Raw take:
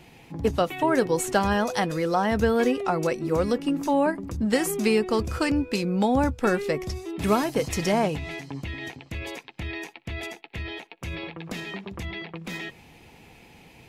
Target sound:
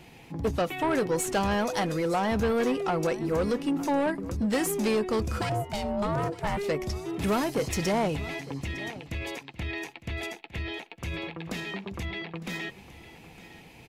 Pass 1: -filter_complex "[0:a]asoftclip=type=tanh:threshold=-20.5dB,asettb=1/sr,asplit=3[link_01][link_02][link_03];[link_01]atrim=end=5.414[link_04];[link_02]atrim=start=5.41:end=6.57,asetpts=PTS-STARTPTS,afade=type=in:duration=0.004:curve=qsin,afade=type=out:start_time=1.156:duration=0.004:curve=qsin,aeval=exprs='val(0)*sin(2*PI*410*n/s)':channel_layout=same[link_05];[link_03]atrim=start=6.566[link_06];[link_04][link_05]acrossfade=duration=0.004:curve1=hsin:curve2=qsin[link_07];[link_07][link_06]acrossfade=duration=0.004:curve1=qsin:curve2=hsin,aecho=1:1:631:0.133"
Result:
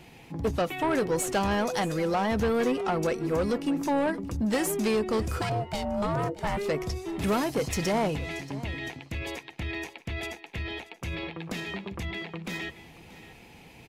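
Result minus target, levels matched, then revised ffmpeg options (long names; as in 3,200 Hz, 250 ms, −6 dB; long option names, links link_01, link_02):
echo 276 ms early
-filter_complex "[0:a]asoftclip=type=tanh:threshold=-20.5dB,asettb=1/sr,asplit=3[link_01][link_02][link_03];[link_01]atrim=end=5.414[link_04];[link_02]atrim=start=5.41:end=6.57,asetpts=PTS-STARTPTS,afade=type=in:duration=0.004:curve=qsin,afade=type=out:start_time=1.156:duration=0.004:curve=qsin,aeval=exprs='val(0)*sin(2*PI*410*n/s)':channel_layout=same[link_05];[link_03]atrim=start=6.566[link_06];[link_04][link_05]acrossfade=duration=0.004:curve1=hsin:curve2=qsin[link_07];[link_07][link_06]acrossfade=duration=0.004:curve1=qsin:curve2=hsin,aecho=1:1:907:0.133"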